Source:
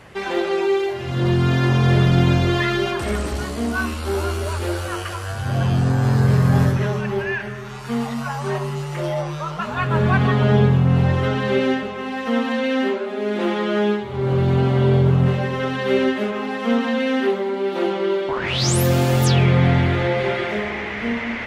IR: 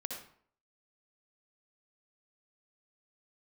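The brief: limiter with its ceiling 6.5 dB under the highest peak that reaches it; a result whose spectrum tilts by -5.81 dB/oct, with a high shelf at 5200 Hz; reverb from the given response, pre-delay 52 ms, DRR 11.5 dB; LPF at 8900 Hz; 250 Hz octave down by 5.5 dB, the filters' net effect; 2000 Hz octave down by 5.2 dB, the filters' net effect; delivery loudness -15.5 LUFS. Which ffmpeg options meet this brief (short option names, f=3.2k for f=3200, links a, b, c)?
-filter_complex "[0:a]lowpass=8.9k,equalizer=f=250:t=o:g=-8.5,equalizer=f=2k:t=o:g=-7.5,highshelf=f=5.2k:g=6,alimiter=limit=-13.5dB:level=0:latency=1,asplit=2[a][b];[1:a]atrim=start_sample=2205,adelay=52[c];[b][c]afir=irnorm=-1:irlink=0,volume=-11.5dB[d];[a][d]amix=inputs=2:normalize=0,volume=8.5dB"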